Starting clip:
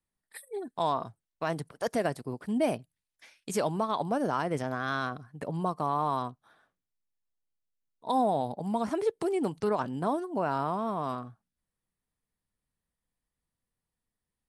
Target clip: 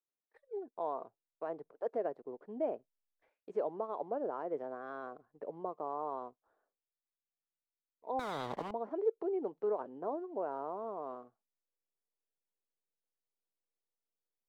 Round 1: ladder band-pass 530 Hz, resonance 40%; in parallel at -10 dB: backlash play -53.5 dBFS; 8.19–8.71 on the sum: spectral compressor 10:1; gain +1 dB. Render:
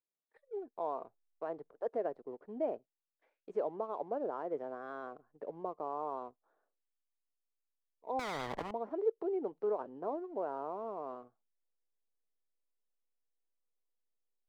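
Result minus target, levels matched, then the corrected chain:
backlash: distortion +10 dB
ladder band-pass 530 Hz, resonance 40%; in parallel at -10 dB: backlash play -64 dBFS; 8.19–8.71 on the sum: spectral compressor 10:1; gain +1 dB

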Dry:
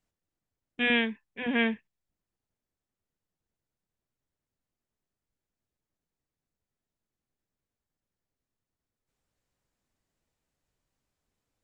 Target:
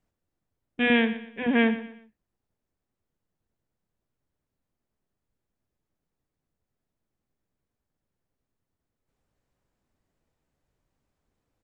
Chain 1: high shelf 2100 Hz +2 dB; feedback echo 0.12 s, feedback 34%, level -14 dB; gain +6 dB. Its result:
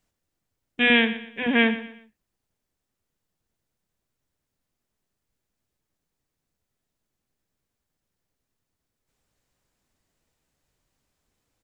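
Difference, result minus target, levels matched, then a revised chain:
4000 Hz band +4.5 dB
high shelf 2100 Hz -9.5 dB; feedback echo 0.12 s, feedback 34%, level -14 dB; gain +6 dB

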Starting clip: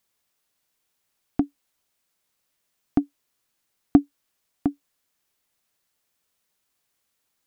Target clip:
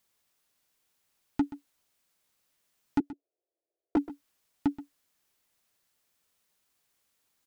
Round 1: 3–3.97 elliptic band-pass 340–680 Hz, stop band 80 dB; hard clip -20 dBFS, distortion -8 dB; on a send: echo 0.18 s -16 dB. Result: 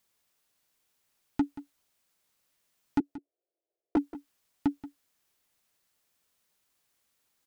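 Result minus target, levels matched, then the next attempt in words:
echo 52 ms late
3–3.97 elliptic band-pass 340–680 Hz, stop band 80 dB; hard clip -20 dBFS, distortion -8 dB; on a send: echo 0.128 s -16 dB

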